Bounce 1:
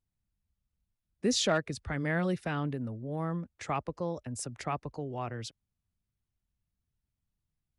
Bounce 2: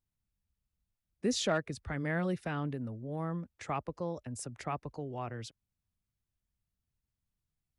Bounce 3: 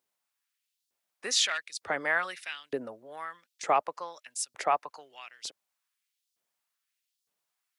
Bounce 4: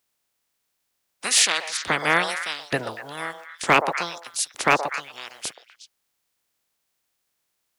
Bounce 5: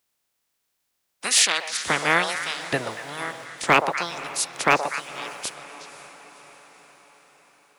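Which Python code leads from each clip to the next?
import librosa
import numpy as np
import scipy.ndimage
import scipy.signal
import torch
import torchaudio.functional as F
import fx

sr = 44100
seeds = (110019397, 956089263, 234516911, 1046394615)

y1 = fx.dynamic_eq(x, sr, hz=4800.0, q=0.73, threshold_db=-48.0, ratio=4.0, max_db=-3)
y1 = y1 * 10.0 ** (-2.5 / 20.0)
y2 = fx.filter_lfo_highpass(y1, sr, shape='saw_up', hz=1.1, low_hz=410.0, high_hz=5000.0, q=1.4)
y2 = y2 * 10.0 ** (9.0 / 20.0)
y3 = fx.spec_clip(y2, sr, under_db=24)
y3 = fx.echo_stepped(y3, sr, ms=122, hz=660.0, octaves=1.4, feedback_pct=70, wet_db=-6.0)
y3 = np.clip(y3, -10.0 ** (-16.5 / 20.0), 10.0 ** (-16.5 / 20.0))
y3 = y3 * 10.0 ** (8.5 / 20.0)
y4 = fx.echo_diffused(y3, sr, ms=529, feedback_pct=57, wet_db=-16.0)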